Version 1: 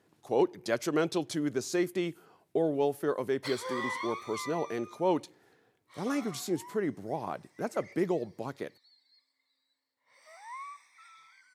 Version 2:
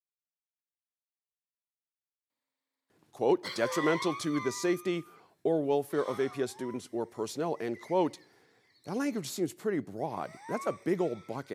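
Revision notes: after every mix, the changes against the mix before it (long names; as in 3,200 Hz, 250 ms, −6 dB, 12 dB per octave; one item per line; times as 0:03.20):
speech: entry +2.90 s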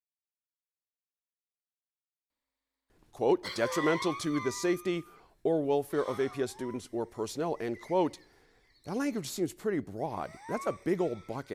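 master: remove high-pass filter 110 Hz 24 dB per octave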